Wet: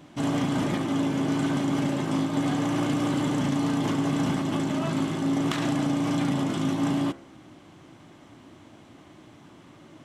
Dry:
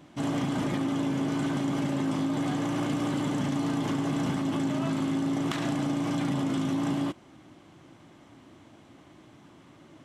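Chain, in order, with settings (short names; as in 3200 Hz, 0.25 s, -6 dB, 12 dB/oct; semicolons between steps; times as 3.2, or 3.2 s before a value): de-hum 67.85 Hz, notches 34; gain +3.5 dB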